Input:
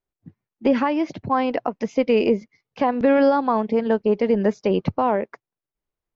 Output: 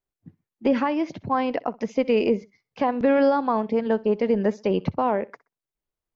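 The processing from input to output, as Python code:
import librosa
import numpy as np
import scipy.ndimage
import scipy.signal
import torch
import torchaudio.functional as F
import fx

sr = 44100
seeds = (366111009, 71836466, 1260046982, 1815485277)

y = fx.echo_feedback(x, sr, ms=63, feedback_pct=30, wet_db=-22)
y = y * 10.0 ** (-2.5 / 20.0)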